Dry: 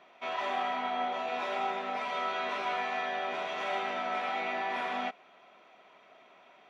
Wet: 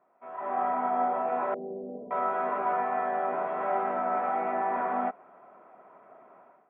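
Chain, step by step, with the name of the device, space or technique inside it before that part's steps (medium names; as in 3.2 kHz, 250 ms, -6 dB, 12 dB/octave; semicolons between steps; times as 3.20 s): 1.54–2.11 s: elliptic low-pass 510 Hz, stop band 70 dB; action camera in a waterproof case (low-pass 1.4 kHz 24 dB/octave; level rider gain up to 15 dB; trim -9 dB; AAC 96 kbps 32 kHz)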